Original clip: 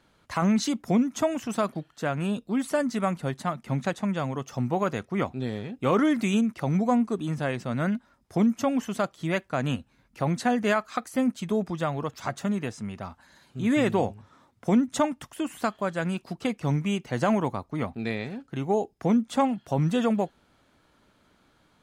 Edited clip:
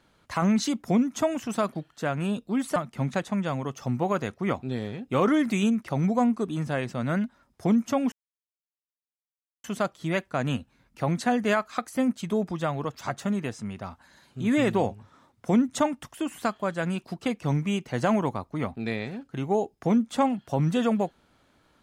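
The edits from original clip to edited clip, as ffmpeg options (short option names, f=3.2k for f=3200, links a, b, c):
-filter_complex "[0:a]asplit=3[a][b][c];[a]atrim=end=2.762[d];[b]atrim=start=3.468:end=8.83,asetpts=PTS-STARTPTS,afade=t=out:st=5.358:d=0.004:c=hsin,apad=pad_dur=1.52[e];[c]atrim=start=8.83,asetpts=PTS-STARTPTS,afade=t=in:d=0.004:c=hsin[f];[e][f]concat=n=2:v=0:a=1[g];[d][g]acrossfade=d=0.004:c1=hsin:c2=hsin"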